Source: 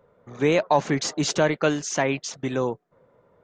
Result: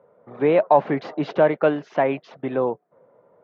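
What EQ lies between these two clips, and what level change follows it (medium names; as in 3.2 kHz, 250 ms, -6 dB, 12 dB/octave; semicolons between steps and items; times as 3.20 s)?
band-pass 150–4200 Hz; distance through air 370 m; peaking EQ 660 Hz +7 dB 1.3 oct; 0.0 dB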